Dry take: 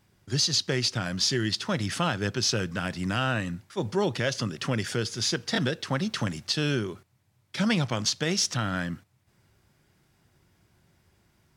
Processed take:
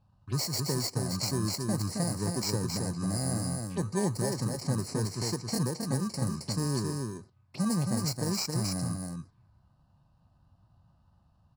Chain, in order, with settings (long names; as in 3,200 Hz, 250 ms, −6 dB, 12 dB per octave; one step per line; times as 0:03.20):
samples in bit-reversed order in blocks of 32 samples
dynamic equaliser 2,500 Hz, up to −4 dB, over −45 dBFS, Q 0.79
in parallel at +2 dB: downward compressor, threshold −36 dBFS, peak gain reduction 14 dB
on the sum: phaser swept by the level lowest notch 350 Hz, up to 3,400 Hz, full sweep at −28 dBFS
low-pass that shuts in the quiet parts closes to 2,300 Hz, open at −23 dBFS
on a send: single-tap delay 269 ms −4 dB
on the sum: formants moved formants −2 semitones
level −4.5 dB